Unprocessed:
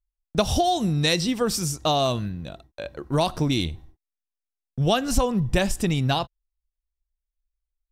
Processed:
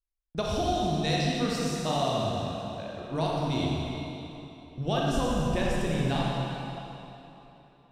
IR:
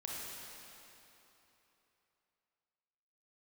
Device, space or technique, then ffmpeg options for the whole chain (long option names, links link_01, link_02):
swimming-pool hall: -filter_complex "[0:a]equalizer=frequency=13000:width_type=o:width=0.92:gain=-5.5[link_01];[1:a]atrim=start_sample=2205[link_02];[link_01][link_02]afir=irnorm=-1:irlink=0,highshelf=frequency=5900:gain=-6,volume=-4.5dB"